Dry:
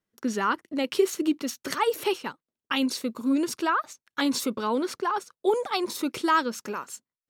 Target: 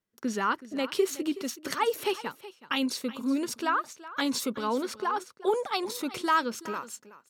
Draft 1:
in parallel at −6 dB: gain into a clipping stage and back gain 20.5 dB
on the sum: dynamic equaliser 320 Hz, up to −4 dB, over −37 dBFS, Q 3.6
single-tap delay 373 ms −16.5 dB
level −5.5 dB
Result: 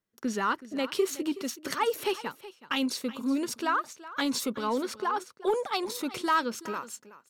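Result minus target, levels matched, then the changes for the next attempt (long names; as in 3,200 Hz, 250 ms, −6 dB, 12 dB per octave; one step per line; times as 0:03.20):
gain into a clipping stage and back: distortion +19 dB
change: gain into a clipping stage and back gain 13.5 dB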